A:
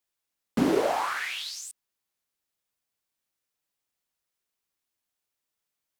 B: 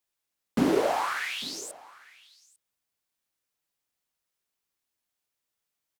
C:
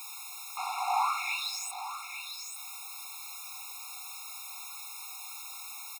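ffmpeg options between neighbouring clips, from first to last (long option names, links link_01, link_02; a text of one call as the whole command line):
ffmpeg -i in.wav -af "aecho=1:1:849:0.0794" out.wav
ffmpeg -i in.wav -af "aeval=exprs='val(0)+0.5*0.0224*sgn(val(0))':channel_layout=same,aecho=1:1:313:0.126,afftfilt=real='re*eq(mod(floor(b*sr/1024/710),2),1)':imag='im*eq(mod(floor(b*sr/1024/710),2),1)':win_size=1024:overlap=0.75" out.wav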